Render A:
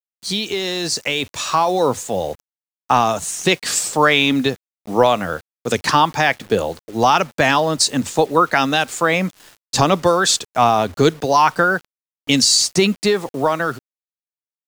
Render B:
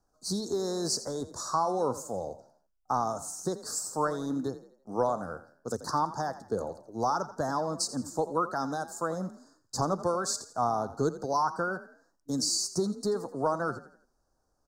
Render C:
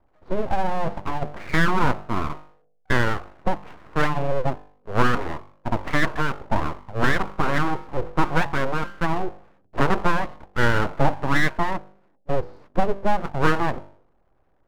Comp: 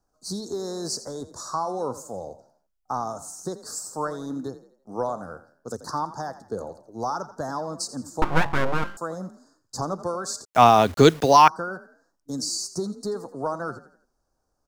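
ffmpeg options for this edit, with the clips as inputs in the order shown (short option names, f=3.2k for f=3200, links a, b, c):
-filter_complex "[1:a]asplit=3[a][b][c];[a]atrim=end=8.222[d];[2:a]atrim=start=8.218:end=8.972[e];[b]atrim=start=8.968:end=10.452[f];[0:a]atrim=start=10.448:end=11.482[g];[c]atrim=start=11.478[h];[d][e]acrossfade=d=0.004:c1=hsin:c2=hsin[i];[i][f]acrossfade=d=0.004:c1=hsin:c2=hsin[j];[j][g]acrossfade=d=0.004:c1=hsin:c2=hsin[k];[k][h]acrossfade=d=0.004:c1=hsin:c2=hsin"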